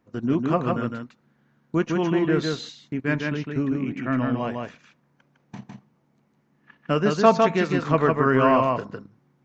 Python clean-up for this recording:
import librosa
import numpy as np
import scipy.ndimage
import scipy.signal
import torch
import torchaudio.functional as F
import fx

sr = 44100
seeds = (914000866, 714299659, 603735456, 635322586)

y = fx.fix_echo_inverse(x, sr, delay_ms=156, level_db=-3.5)